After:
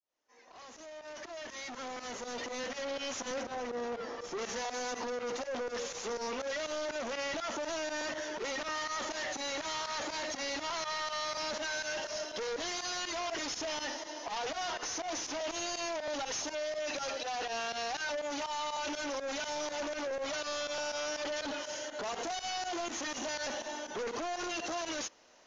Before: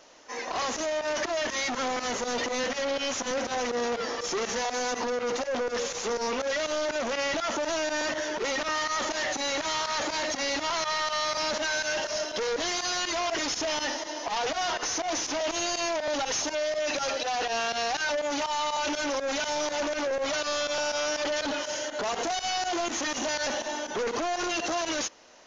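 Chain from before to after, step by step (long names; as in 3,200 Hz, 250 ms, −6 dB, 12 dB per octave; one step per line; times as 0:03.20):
fade in at the beginning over 3.20 s
0:03.43–0:04.39: high-shelf EQ 2,500 Hz −10 dB
level −7.5 dB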